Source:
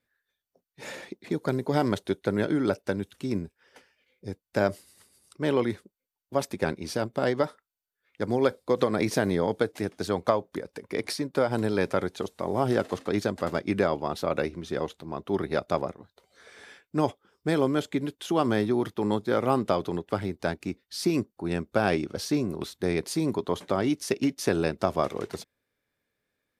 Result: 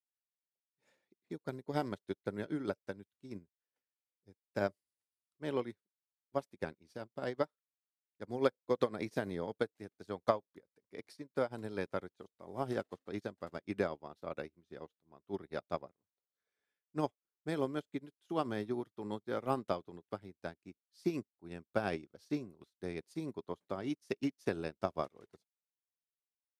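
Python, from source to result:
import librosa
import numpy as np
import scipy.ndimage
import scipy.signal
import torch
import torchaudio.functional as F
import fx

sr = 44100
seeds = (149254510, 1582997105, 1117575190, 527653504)

y = fx.upward_expand(x, sr, threshold_db=-42.0, expansion=2.5)
y = y * 10.0 ** (-4.5 / 20.0)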